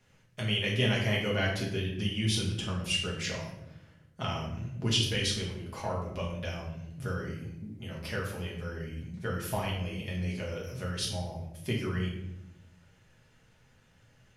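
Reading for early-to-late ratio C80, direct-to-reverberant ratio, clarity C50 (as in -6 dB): 7.5 dB, -4.0 dB, 4.0 dB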